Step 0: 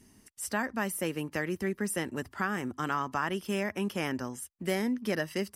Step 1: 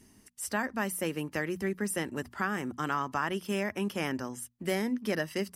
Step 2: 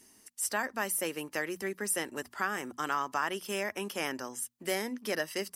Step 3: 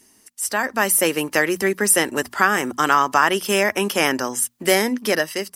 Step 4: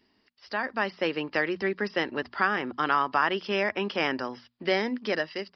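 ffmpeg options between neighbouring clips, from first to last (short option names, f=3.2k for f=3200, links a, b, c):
-af "areverse,acompressor=mode=upward:threshold=-53dB:ratio=2.5,areverse,bandreject=f=60:t=h:w=6,bandreject=f=120:t=h:w=6,bandreject=f=180:t=h:w=6,bandreject=f=240:t=h:w=6"
-af "bass=f=250:g=-14,treble=f=4k:g=5"
-af "dynaudnorm=f=190:g=7:m=10.5dB,volume=5dB"
-af "aresample=11025,aresample=44100,volume=-8dB"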